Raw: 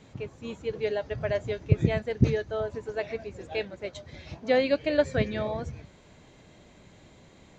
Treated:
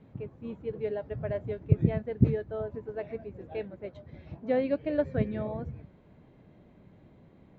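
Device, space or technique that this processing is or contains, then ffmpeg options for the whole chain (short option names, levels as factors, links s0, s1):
phone in a pocket: -af "lowpass=3400,equalizer=f=180:t=o:w=2.3:g=6,highshelf=f=2200:g=-12,volume=0.531"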